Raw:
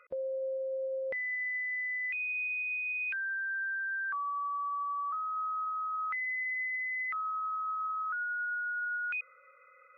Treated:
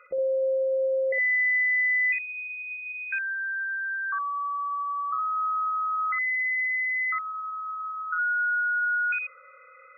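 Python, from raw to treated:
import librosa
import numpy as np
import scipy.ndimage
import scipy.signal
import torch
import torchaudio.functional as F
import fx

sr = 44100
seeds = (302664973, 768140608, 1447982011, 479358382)

y = fx.spec_gate(x, sr, threshold_db=-25, keep='strong')
y = fx.room_early_taps(y, sr, ms=(17, 60), db=(-14.5, -4.5))
y = y * 10.0 ** (6.5 / 20.0)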